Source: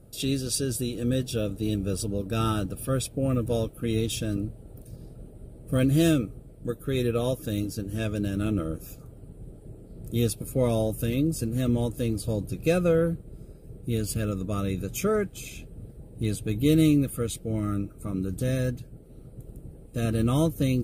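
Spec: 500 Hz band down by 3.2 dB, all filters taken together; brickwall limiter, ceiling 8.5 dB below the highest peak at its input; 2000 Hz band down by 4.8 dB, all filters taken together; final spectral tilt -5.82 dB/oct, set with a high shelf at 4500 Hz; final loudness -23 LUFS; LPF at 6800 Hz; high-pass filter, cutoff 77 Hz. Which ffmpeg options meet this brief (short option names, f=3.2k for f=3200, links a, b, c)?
-af "highpass=77,lowpass=6.8k,equalizer=f=500:t=o:g=-3.5,equalizer=f=2k:t=o:g=-8.5,highshelf=f=4.5k:g=7,volume=8.5dB,alimiter=limit=-12dB:level=0:latency=1"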